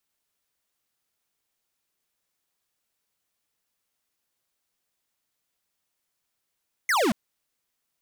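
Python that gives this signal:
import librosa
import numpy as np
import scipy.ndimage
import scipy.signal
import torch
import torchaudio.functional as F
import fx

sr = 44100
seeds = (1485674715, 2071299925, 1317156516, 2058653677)

y = fx.laser_zap(sr, level_db=-22.0, start_hz=2200.0, end_hz=190.0, length_s=0.23, wave='square')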